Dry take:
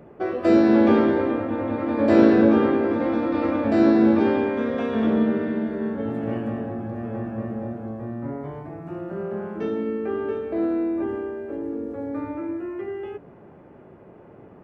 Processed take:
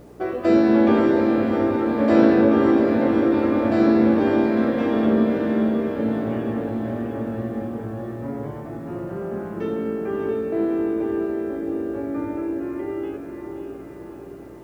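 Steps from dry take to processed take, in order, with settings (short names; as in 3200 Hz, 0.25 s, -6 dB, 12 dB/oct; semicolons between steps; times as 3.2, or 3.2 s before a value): diffused feedback echo 0.625 s, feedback 58%, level -6 dB; buzz 60 Hz, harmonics 8, -48 dBFS -1 dB/oct; bit-crush 10-bit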